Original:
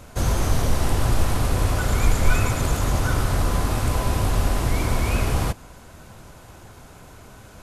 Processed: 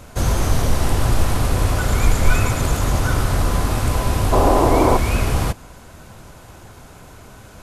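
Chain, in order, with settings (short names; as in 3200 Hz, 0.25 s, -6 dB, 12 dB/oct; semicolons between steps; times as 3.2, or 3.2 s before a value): 4.32–4.97 band shelf 550 Hz +12.5 dB 2.3 oct; gain +3 dB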